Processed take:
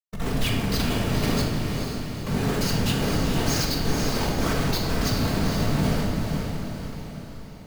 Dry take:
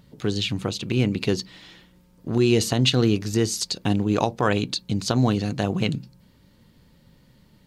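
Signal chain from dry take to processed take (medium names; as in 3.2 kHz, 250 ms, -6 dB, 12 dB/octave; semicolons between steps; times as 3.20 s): rippled Chebyshev low-pass 6.7 kHz, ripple 6 dB; bass shelf 310 Hz +8.5 dB; Schmitt trigger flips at -37.5 dBFS; whisper effect; on a send: echo that smears into a reverb 469 ms, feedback 52%, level -5 dB; on the sum: simulated room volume 750 m³, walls mixed, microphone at 1.6 m; trim -4 dB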